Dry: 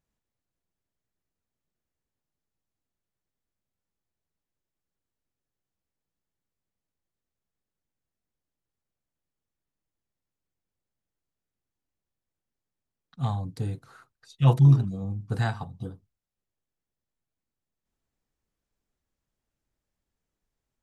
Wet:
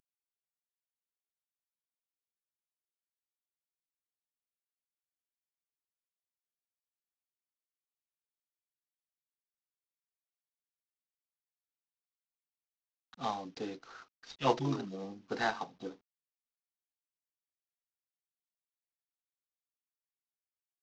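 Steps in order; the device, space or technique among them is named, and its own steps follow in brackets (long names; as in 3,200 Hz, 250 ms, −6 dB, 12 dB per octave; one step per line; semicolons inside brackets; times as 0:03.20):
early wireless headset (high-pass filter 270 Hz 24 dB per octave; variable-slope delta modulation 32 kbit/s)
level +1 dB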